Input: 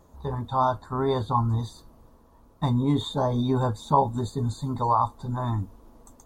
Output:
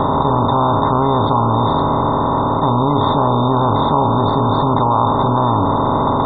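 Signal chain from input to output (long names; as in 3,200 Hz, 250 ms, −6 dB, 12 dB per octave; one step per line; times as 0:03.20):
compressor on every frequency bin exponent 0.2
low-pass filter 3,600 Hz 12 dB per octave
in parallel at +1.5 dB: compressor whose output falls as the input rises −20 dBFS, ratio −1
on the sum: gate on every frequency bin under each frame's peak −30 dB strong
level −2.5 dB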